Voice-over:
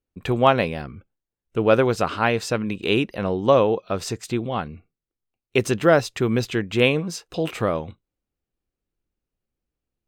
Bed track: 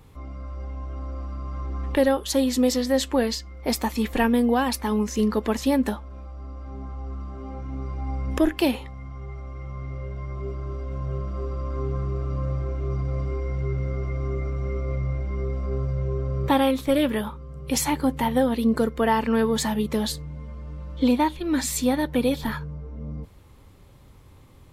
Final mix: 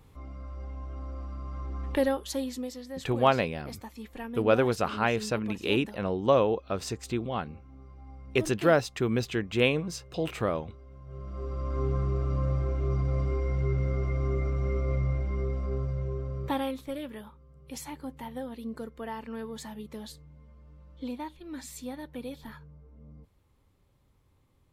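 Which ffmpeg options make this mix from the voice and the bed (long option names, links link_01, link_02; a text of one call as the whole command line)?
ffmpeg -i stem1.wav -i stem2.wav -filter_complex "[0:a]adelay=2800,volume=-6dB[link_01];[1:a]volume=11.5dB,afade=type=out:start_time=1.99:duration=0.72:silence=0.237137,afade=type=in:start_time=11.05:duration=0.79:silence=0.141254,afade=type=out:start_time=14.98:duration=2.03:silence=0.16788[link_02];[link_01][link_02]amix=inputs=2:normalize=0" out.wav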